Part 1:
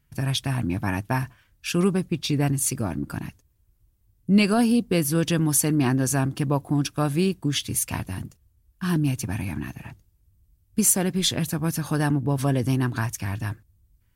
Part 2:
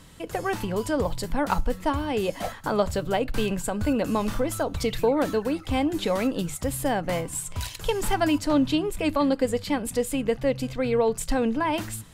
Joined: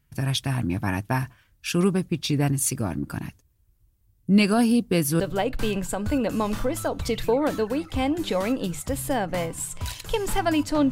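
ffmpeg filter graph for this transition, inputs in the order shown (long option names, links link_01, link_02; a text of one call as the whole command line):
ffmpeg -i cue0.wav -i cue1.wav -filter_complex "[0:a]apad=whole_dur=10.91,atrim=end=10.91,atrim=end=5.202[link_01];[1:a]atrim=start=2.948:end=8.66[link_02];[link_01][link_02]acrossfade=duration=0.004:curve1=hsin:curve2=hsin" out.wav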